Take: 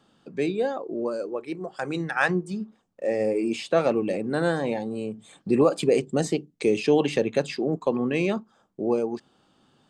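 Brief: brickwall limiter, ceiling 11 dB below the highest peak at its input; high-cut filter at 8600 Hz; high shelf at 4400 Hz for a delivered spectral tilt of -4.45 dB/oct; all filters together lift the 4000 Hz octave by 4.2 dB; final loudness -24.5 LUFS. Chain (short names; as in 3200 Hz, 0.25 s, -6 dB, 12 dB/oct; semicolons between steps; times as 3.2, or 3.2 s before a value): LPF 8600 Hz; bell 4000 Hz +8 dB; high shelf 4400 Hz -5 dB; gain +5.5 dB; limiter -13.5 dBFS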